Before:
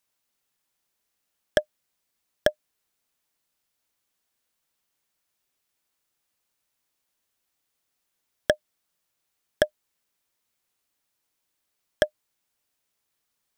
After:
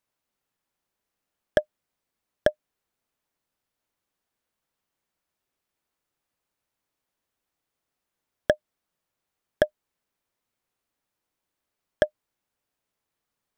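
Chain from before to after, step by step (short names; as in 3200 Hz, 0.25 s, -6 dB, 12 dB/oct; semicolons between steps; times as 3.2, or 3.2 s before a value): high shelf 2200 Hz -10 dB; gain +1.5 dB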